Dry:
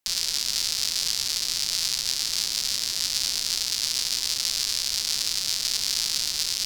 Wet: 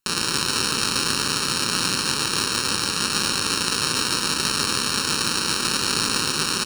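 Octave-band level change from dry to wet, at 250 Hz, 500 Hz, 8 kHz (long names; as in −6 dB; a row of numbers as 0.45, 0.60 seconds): +22.0, +18.5, +2.0 decibels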